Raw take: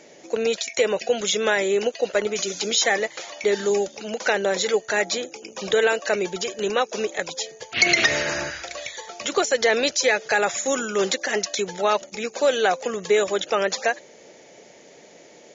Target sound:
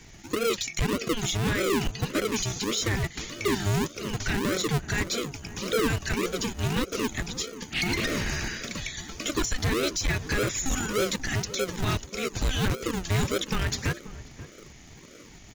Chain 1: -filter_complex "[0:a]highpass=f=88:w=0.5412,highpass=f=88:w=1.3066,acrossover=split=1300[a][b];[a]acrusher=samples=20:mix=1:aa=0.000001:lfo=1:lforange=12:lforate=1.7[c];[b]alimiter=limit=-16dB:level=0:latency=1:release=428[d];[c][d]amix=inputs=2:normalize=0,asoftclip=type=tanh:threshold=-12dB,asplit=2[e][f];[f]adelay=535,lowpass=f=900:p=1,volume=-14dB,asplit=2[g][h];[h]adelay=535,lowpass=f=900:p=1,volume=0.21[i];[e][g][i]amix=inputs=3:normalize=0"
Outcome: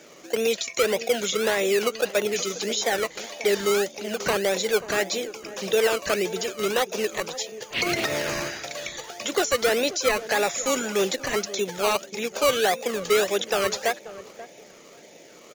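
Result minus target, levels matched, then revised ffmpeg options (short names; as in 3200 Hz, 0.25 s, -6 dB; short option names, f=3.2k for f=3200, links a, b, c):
decimation with a swept rate: distortion -26 dB; soft clip: distortion -11 dB
-filter_complex "[0:a]highpass=f=88:w=0.5412,highpass=f=88:w=1.3066,acrossover=split=1300[a][b];[a]acrusher=samples=67:mix=1:aa=0.000001:lfo=1:lforange=40.2:lforate=1.7[c];[b]alimiter=limit=-16dB:level=0:latency=1:release=428[d];[c][d]amix=inputs=2:normalize=0,asoftclip=type=tanh:threshold=-21dB,asplit=2[e][f];[f]adelay=535,lowpass=f=900:p=1,volume=-14dB,asplit=2[g][h];[h]adelay=535,lowpass=f=900:p=1,volume=0.21[i];[e][g][i]amix=inputs=3:normalize=0"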